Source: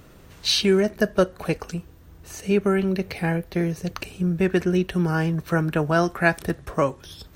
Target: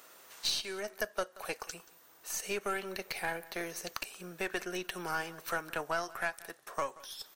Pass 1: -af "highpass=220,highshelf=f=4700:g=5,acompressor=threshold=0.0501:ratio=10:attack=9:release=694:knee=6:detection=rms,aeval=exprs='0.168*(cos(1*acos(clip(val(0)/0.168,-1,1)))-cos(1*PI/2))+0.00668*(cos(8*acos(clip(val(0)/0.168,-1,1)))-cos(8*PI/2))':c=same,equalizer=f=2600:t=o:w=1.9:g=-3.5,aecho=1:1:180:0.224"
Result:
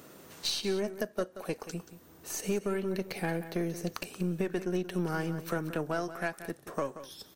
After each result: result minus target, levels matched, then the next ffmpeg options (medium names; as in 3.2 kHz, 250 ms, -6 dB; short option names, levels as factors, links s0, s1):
250 Hz band +9.0 dB; echo-to-direct +7.5 dB
-af "highpass=810,highshelf=f=4700:g=5,acompressor=threshold=0.0501:ratio=10:attack=9:release=694:knee=6:detection=rms,aeval=exprs='0.168*(cos(1*acos(clip(val(0)/0.168,-1,1)))-cos(1*PI/2))+0.00668*(cos(8*acos(clip(val(0)/0.168,-1,1)))-cos(8*PI/2))':c=same,equalizer=f=2600:t=o:w=1.9:g=-3.5,aecho=1:1:180:0.224"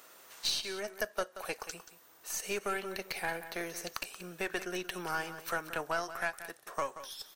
echo-to-direct +7.5 dB
-af "highpass=810,highshelf=f=4700:g=5,acompressor=threshold=0.0501:ratio=10:attack=9:release=694:knee=6:detection=rms,aeval=exprs='0.168*(cos(1*acos(clip(val(0)/0.168,-1,1)))-cos(1*PI/2))+0.00668*(cos(8*acos(clip(val(0)/0.168,-1,1)))-cos(8*PI/2))':c=same,equalizer=f=2600:t=o:w=1.9:g=-3.5,aecho=1:1:180:0.0944"